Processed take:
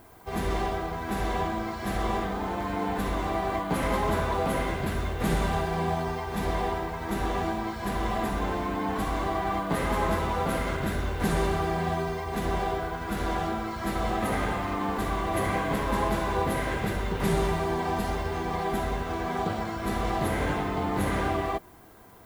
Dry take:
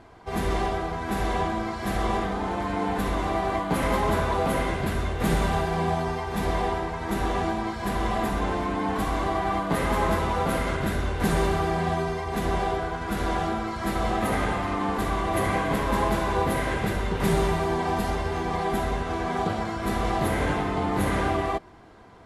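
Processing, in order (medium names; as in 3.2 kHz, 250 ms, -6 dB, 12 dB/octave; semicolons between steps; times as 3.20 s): added noise violet -57 dBFS; trim -2.5 dB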